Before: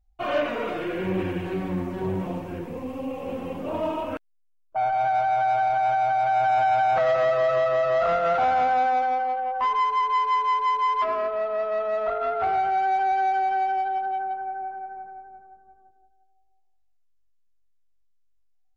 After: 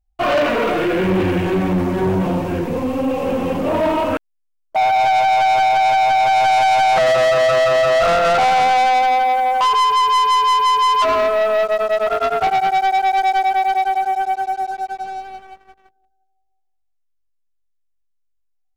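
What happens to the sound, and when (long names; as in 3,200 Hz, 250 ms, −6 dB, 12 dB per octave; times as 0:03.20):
0:11.63–0:15.02: tremolo along a rectified sine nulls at 9.7 Hz
whole clip: leveller curve on the samples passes 3; level +2 dB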